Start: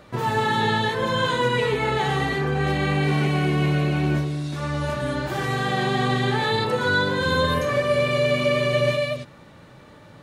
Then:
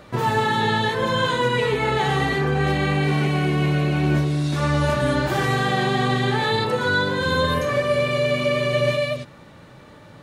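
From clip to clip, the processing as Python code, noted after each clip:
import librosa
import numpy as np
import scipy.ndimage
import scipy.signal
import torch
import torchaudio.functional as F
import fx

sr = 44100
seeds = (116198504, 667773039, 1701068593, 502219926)

y = fx.rider(x, sr, range_db=10, speed_s=0.5)
y = F.gain(torch.from_numpy(y), 1.5).numpy()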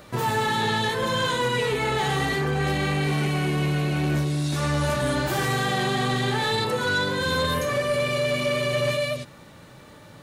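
y = fx.high_shelf(x, sr, hz=5800.0, db=11.5)
y = 10.0 ** (-15.0 / 20.0) * np.tanh(y / 10.0 ** (-15.0 / 20.0))
y = F.gain(torch.from_numpy(y), -2.0).numpy()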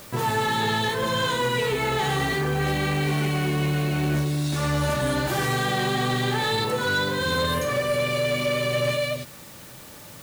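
y = fx.dmg_noise_colour(x, sr, seeds[0], colour='white', level_db=-46.0)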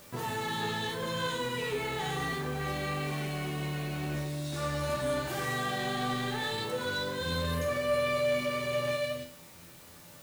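y = fx.comb_fb(x, sr, f0_hz=84.0, decay_s=0.5, harmonics='all', damping=0.0, mix_pct=80)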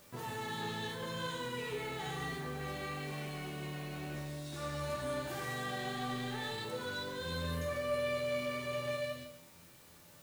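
y = x + 10.0 ** (-10.0 / 20.0) * np.pad(x, (int(145 * sr / 1000.0), 0))[:len(x)]
y = F.gain(torch.from_numpy(y), -7.0).numpy()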